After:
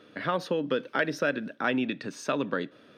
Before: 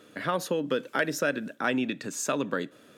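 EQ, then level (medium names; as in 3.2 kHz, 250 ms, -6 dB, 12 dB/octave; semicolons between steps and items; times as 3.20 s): Savitzky-Golay filter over 15 samples; 0.0 dB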